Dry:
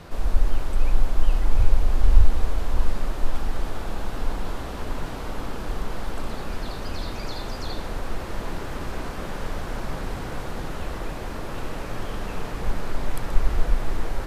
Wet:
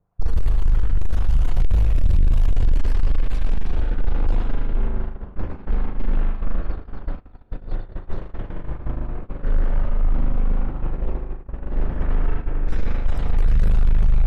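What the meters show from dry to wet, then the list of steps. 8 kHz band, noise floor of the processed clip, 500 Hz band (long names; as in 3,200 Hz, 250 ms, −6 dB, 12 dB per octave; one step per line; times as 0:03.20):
can't be measured, −40 dBFS, −2.5 dB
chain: time-frequency cells dropped at random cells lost 34%
low-pass that shuts in the quiet parts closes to 730 Hz, open at −13 dBFS
gate pattern "xxxx.xx.xxx" 123 BPM −12 dB
echo with a time of its own for lows and highs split 570 Hz, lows 467 ms, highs 111 ms, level −6 dB
spring reverb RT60 2.3 s, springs 39 ms, chirp 70 ms, DRR −2.5 dB
soft clipping −20 dBFS, distortion −5 dB
dynamic equaliser 960 Hz, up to −5 dB, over −46 dBFS, Q 0.85
noise gate −27 dBFS, range −31 dB
low-shelf EQ 90 Hz +7.5 dB
level +2.5 dB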